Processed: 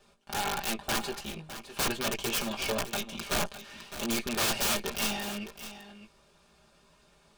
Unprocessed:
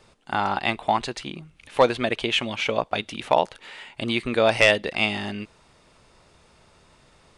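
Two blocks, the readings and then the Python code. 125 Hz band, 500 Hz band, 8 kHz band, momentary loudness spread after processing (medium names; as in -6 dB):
-7.5 dB, -13.0 dB, +8.5 dB, 14 LU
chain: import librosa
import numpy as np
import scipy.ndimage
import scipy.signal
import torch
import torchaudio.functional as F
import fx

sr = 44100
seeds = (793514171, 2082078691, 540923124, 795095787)

p1 = fx.lower_of_two(x, sr, delay_ms=5.0)
p2 = fx.doubler(p1, sr, ms=18.0, db=-7.0)
p3 = (np.mod(10.0 ** (17.0 / 20.0) * p2 + 1.0, 2.0) - 1.0) / 10.0 ** (17.0 / 20.0)
p4 = fx.notch(p3, sr, hz=2000.0, q=10.0)
p5 = p4 + fx.echo_single(p4, sr, ms=608, db=-12.5, dry=0)
y = p5 * 10.0 ** (-5.5 / 20.0)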